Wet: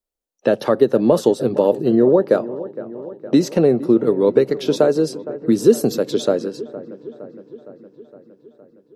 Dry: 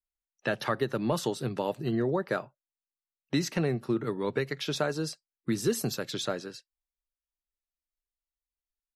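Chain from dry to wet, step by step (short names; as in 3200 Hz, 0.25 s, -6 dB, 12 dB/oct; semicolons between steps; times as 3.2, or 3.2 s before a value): ten-band EQ 125 Hz -3 dB, 250 Hz +8 dB, 500 Hz +12 dB, 2000 Hz -6 dB; dark delay 0.463 s, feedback 63%, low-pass 1700 Hz, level -15.5 dB; gain +5 dB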